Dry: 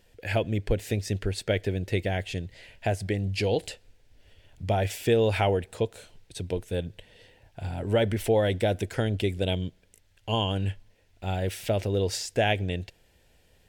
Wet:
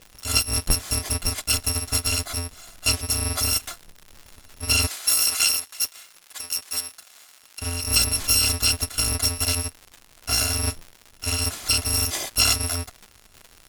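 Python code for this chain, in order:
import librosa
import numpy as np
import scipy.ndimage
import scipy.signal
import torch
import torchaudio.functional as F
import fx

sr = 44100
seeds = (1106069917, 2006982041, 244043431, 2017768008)

y = fx.bit_reversed(x, sr, seeds[0], block=256)
y = scipy.signal.sosfilt(scipy.signal.butter(2, 11000.0, 'lowpass', fs=sr, output='sos'), y)
y = fx.dmg_crackle(y, sr, seeds[1], per_s=180.0, level_db=-39.0)
y = fx.highpass(y, sr, hz=1200.0, slope=6, at=(4.87, 7.62))
y = y * librosa.db_to_amplitude(7.0)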